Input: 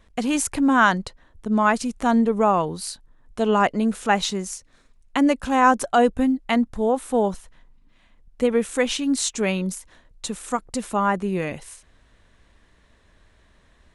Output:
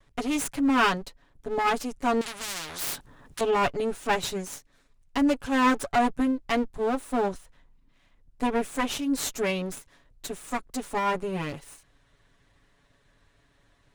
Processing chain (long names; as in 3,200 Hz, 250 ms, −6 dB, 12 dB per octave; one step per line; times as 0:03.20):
lower of the sound and its delayed copy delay 7.1 ms
0:02.21–0:03.41: every bin compressed towards the loudest bin 10 to 1
level −4.5 dB